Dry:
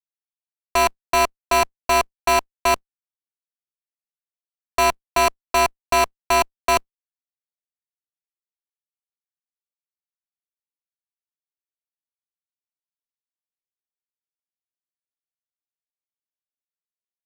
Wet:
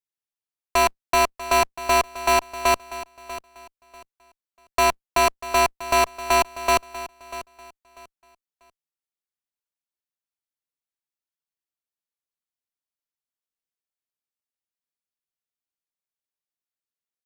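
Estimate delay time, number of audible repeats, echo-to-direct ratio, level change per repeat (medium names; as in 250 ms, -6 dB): 642 ms, 2, -14.5 dB, -12.0 dB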